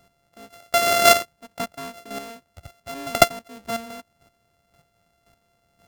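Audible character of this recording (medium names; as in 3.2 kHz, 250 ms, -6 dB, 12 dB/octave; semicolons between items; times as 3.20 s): a buzz of ramps at a fixed pitch in blocks of 64 samples; chopped level 1.9 Hz, depth 65%, duty 15%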